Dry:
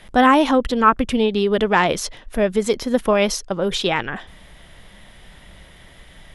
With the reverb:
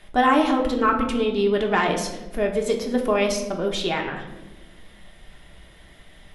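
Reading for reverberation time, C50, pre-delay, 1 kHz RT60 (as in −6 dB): 1.1 s, 7.5 dB, 3 ms, 0.85 s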